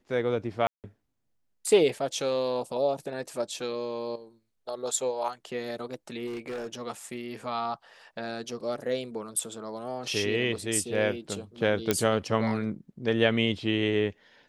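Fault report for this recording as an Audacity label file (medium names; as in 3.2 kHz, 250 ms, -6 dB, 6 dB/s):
0.670000	0.840000	dropout 168 ms
6.260000	6.670000	clipped -32 dBFS
11.910000	11.910000	pop -8 dBFS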